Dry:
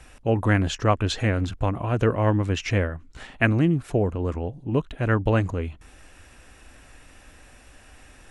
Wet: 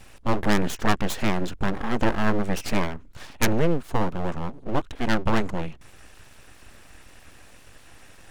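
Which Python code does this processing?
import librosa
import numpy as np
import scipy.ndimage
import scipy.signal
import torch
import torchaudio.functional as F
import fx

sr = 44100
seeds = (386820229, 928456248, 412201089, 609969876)

y = fx.self_delay(x, sr, depth_ms=0.22)
y = np.abs(y)
y = F.gain(torch.from_numpy(y), 2.0).numpy()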